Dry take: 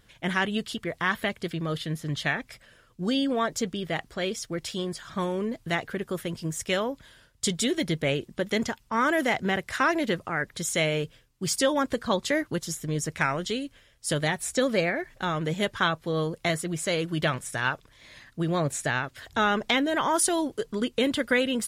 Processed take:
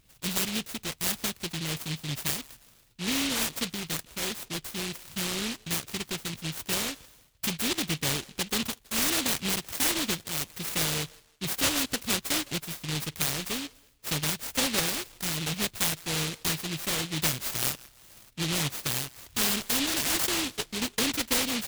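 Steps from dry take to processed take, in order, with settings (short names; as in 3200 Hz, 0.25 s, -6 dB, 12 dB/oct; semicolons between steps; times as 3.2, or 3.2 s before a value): 17.2–17.66 high shelf 3200 Hz +10.5 dB; on a send: band-limited delay 0.16 s, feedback 31%, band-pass 860 Hz, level -20.5 dB; on the sum: noise-modulated delay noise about 3100 Hz, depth 0.49 ms; gain -3 dB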